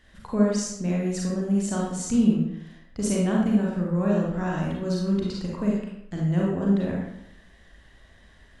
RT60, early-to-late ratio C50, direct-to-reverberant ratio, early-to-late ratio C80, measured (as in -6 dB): 0.80 s, -0.5 dB, -3.5 dB, 4.0 dB